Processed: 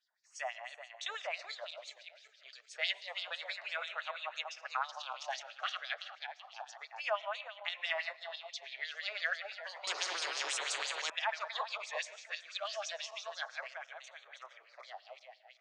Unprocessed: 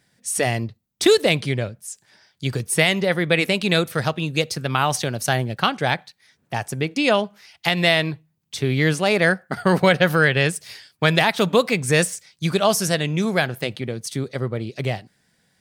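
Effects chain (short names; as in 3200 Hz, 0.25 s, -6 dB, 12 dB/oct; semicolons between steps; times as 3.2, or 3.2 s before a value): regenerating reverse delay 0.19 s, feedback 59%, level -4.5 dB; LFO band-pass sine 6 Hz 840–5100 Hz; Chebyshev band-pass 600–7000 Hz, order 4; LFO notch sine 0.3 Hz 890–5200 Hz; on a send at -21 dB: reverb RT60 0.75 s, pre-delay 70 ms; 9.87–11.1 on the sum: spectral compressor 10:1; gain -8.5 dB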